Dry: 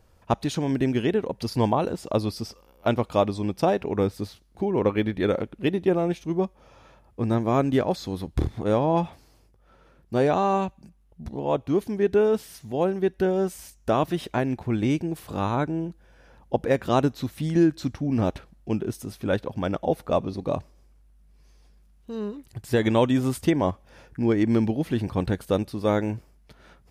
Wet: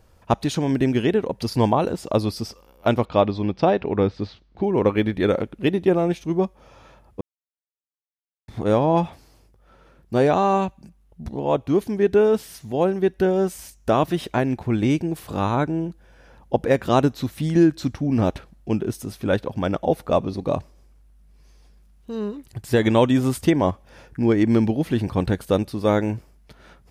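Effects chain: 3.05–4.64 LPF 4600 Hz 24 dB/oct; 7.21–8.48 mute; gain +3.5 dB

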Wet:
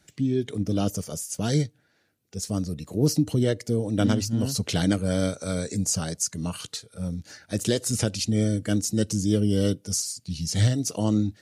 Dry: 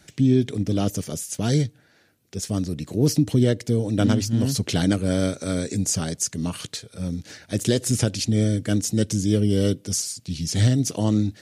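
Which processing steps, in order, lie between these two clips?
spectral noise reduction 7 dB; gain -1.5 dB

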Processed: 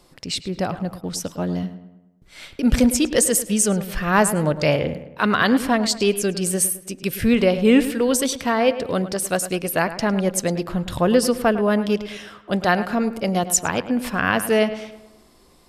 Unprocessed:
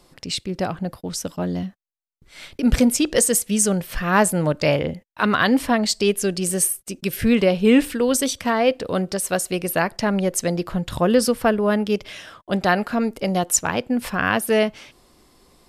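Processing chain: darkening echo 0.106 s, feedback 49%, low-pass 3000 Hz, level -12.5 dB

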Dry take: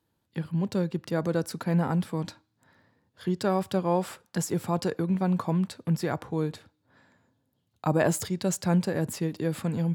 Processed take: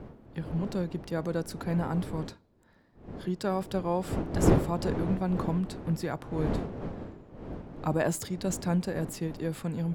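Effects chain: wind noise 340 Hz -31 dBFS; gain -4 dB

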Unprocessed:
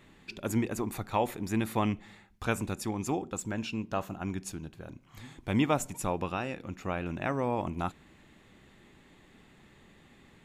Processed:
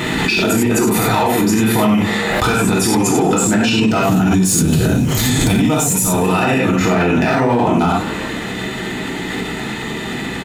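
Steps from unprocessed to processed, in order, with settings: low shelf 120 Hz -4.5 dB; notches 50/100/150 Hz; 4.09–6.16 tone controls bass +10 dB, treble +13 dB; compressor 6:1, threshold -36 dBFS, peak gain reduction 17.5 dB; overloaded stage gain 31.5 dB; notch comb 550 Hz; frequency-shifting echo 0.162 s, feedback 54%, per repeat +130 Hz, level -21 dB; non-linear reverb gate 0.13 s flat, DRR -5 dB; maximiser +35.5 dB; backwards sustainer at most 20 dB/s; gain -6 dB

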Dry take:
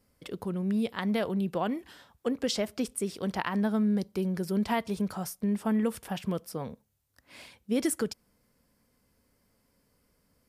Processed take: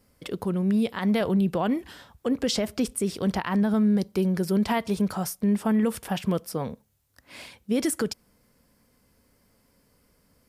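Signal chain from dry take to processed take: 1.21–3.74 low shelf 130 Hz +7.5 dB; limiter -22 dBFS, peak gain reduction 7.5 dB; gain +6 dB

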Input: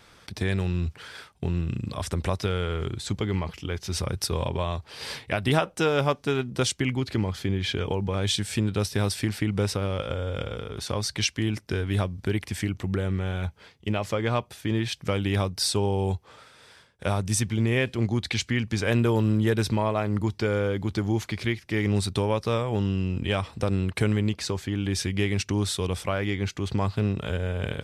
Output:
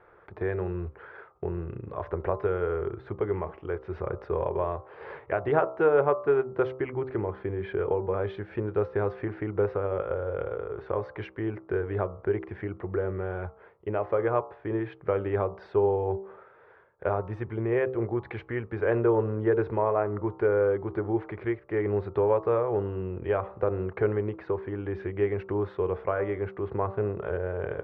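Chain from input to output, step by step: LPF 1600 Hz 24 dB/oct; resonant low shelf 310 Hz -7 dB, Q 3; de-hum 64.74 Hz, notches 21

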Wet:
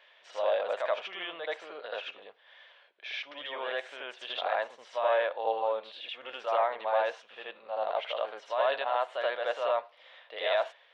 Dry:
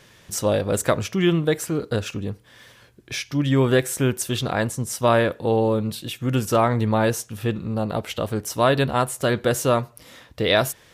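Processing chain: limiter -13 dBFS, peak gain reduction 7.5 dB; Chebyshev band-pass 600–3400 Hz, order 3; bell 1300 Hz -4.5 dB 0.59 oct; on a send: reverse echo 80 ms -3.5 dB; on the sum: dynamic EQ 830 Hz, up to +5 dB, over -36 dBFS, Q 0.78; gain -5.5 dB

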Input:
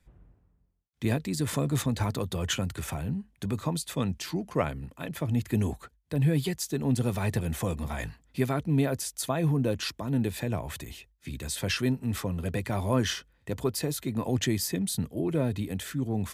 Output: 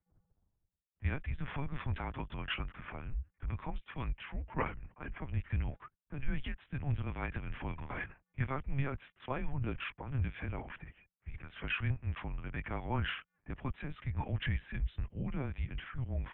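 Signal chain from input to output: low-pass opened by the level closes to 750 Hz, open at -24.5 dBFS; bell 440 Hz -12 dB 1.6 oct; LPC vocoder at 8 kHz pitch kept; mistuned SSB -140 Hz 200–2900 Hz; low shelf 90 Hz +8 dB; gain -1 dB

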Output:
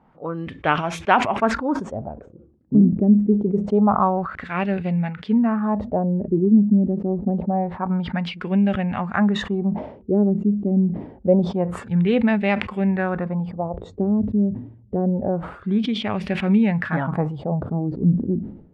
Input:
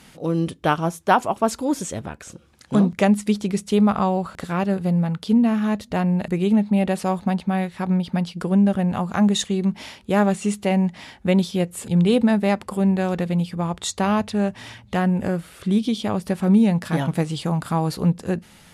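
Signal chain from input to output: LFO low-pass sine 0.26 Hz 290–2500 Hz; spectral noise reduction 7 dB; sustainer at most 92 dB/s; gain -1.5 dB

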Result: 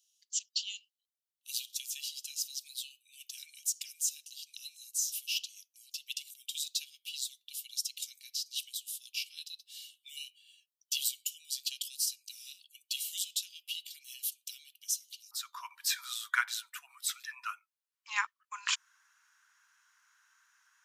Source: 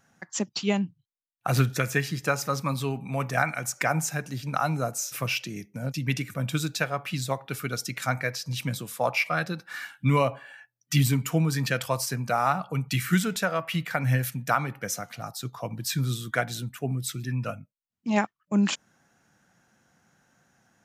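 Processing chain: Chebyshev high-pass 2900 Hz, order 6, from 15.31 s 980 Hz

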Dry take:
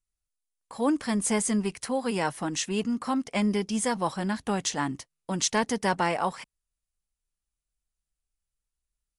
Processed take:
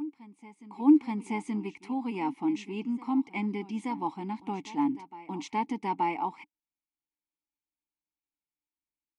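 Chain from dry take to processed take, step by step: vowel filter u; reverse echo 0.877 s -17.5 dB; gain +8 dB

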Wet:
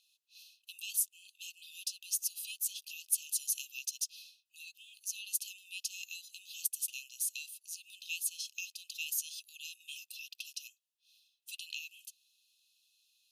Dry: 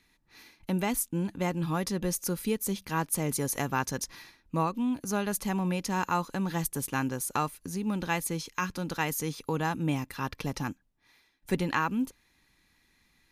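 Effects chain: brick-wall FIR high-pass 2500 Hz

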